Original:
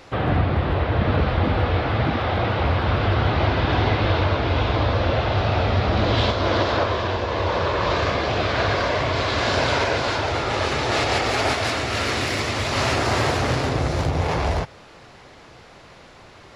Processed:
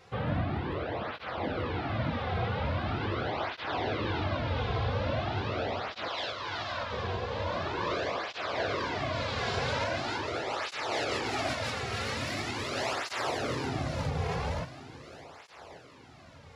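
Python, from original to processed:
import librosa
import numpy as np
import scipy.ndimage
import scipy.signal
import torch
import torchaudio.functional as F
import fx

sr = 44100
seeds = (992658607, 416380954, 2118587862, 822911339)

p1 = fx.highpass(x, sr, hz=880.0, slope=12, at=(6.08, 6.93))
p2 = p1 + fx.echo_feedback(p1, sr, ms=1141, feedback_pct=37, wet_db=-14.5, dry=0)
p3 = fx.flanger_cancel(p2, sr, hz=0.42, depth_ms=3.5)
y = p3 * 10.0 ** (-7.5 / 20.0)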